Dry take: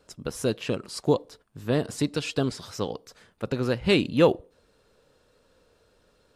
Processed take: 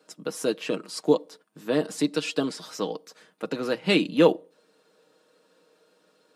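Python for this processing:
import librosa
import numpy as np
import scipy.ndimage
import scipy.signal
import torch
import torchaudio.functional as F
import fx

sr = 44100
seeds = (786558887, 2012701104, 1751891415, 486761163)

y = scipy.signal.sosfilt(scipy.signal.butter(6, 180.0, 'highpass', fs=sr, output='sos'), x)
y = y + 0.48 * np.pad(y, (int(6.4 * sr / 1000.0), 0))[:len(y)]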